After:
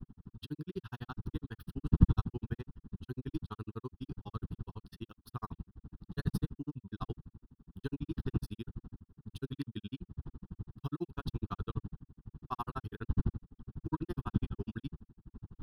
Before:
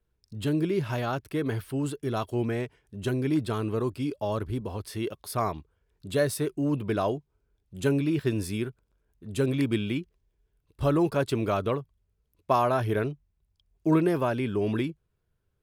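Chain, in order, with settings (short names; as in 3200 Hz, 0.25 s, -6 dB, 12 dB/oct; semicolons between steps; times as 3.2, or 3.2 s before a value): wind noise 160 Hz -27 dBFS; grains 51 ms, grains 12/s, spray 13 ms, pitch spread up and down by 0 st; fixed phaser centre 2200 Hz, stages 6; gain -6 dB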